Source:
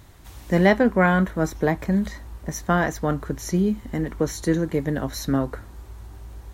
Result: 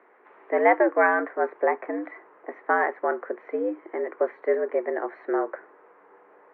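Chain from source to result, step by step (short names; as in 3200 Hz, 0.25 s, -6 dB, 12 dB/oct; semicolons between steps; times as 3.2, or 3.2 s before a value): mistuned SSB +93 Hz 270–2000 Hz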